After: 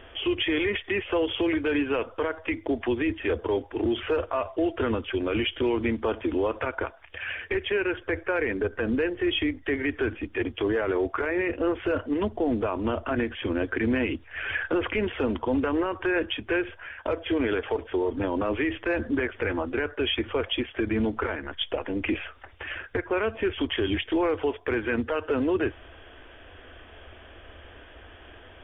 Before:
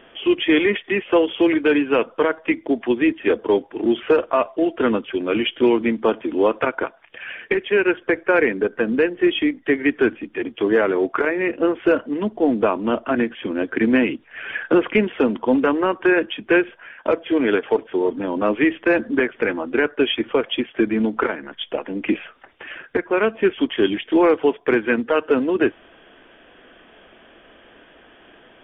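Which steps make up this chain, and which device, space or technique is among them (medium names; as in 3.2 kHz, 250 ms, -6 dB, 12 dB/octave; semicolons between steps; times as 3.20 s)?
car stereo with a boomy subwoofer (resonant low shelf 120 Hz +11.5 dB, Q 3; peak limiter -17.5 dBFS, peak gain reduction 11 dB)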